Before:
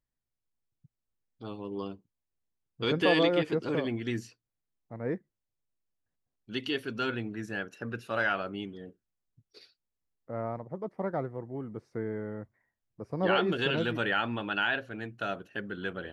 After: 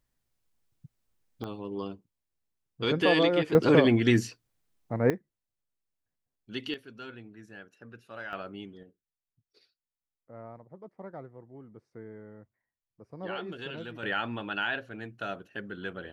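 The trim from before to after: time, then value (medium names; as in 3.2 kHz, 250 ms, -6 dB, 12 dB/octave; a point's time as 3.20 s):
+9.5 dB
from 1.44 s +1 dB
from 3.55 s +10.5 dB
from 5.10 s -2 dB
from 6.74 s -12 dB
from 8.33 s -4.5 dB
from 8.83 s -10.5 dB
from 14.03 s -2 dB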